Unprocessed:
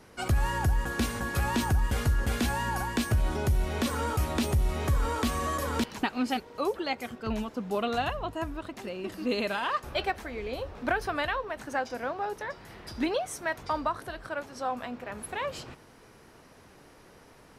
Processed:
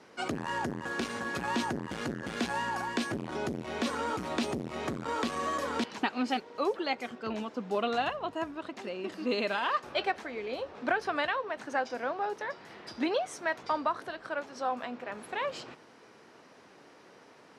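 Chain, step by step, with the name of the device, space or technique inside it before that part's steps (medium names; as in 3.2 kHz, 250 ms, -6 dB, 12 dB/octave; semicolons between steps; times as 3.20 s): public-address speaker with an overloaded transformer (transformer saturation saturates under 260 Hz; band-pass 220–6300 Hz)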